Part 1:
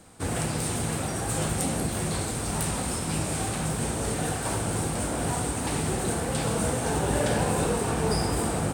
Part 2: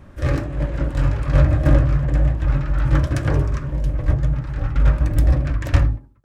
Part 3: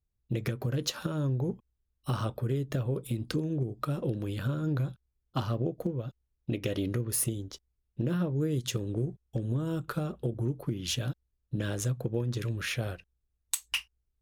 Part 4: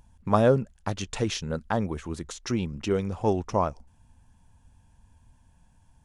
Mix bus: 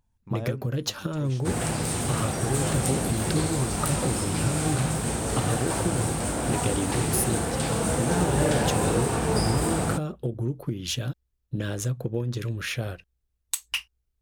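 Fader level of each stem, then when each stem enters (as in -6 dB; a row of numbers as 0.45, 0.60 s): +1.0 dB, off, +2.5 dB, -15.0 dB; 1.25 s, off, 0.00 s, 0.00 s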